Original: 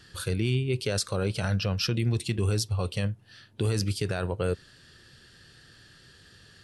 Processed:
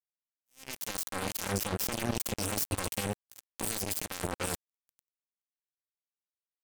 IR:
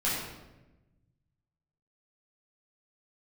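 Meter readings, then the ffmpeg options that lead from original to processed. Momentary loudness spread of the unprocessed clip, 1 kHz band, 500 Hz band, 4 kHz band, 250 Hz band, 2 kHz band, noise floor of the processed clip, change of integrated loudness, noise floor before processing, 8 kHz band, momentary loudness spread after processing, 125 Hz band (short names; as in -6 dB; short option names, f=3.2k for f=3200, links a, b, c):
5 LU, +1.5 dB, -8.0 dB, -5.5 dB, -6.5 dB, -3.0 dB, under -85 dBFS, -5.0 dB, -56 dBFS, +3.0 dB, 9 LU, -14.0 dB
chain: -af "highshelf=f=11k:g=10.5,aecho=1:1:3.8:0.94,areverse,acompressor=threshold=-35dB:ratio=8,areverse,alimiter=level_in=10dB:limit=-24dB:level=0:latency=1:release=10,volume=-10dB,dynaudnorm=f=350:g=3:m=11dB,aecho=1:1:578:0.251,acrusher=bits=3:mix=0:aa=0.5,aexciter=amount=3.1:drive=3.3:freq=6.2k,asoftclip=type=tanh:threshold=-21dB,aeval=exprs='0.0891*(cos(1*acos(clip(val(0)/0.0891,-1,1)))-cos(1*PI/2))+0.002*(cos(3*acos(clip(val(0)/0.0891,-1,1)))-cos(3*PI/2))+0.00891*(cos(7*acos(clip(val(0)/0.0891,-1,1)))-cos(7*PI/2))':c=same,volume=2.5dB"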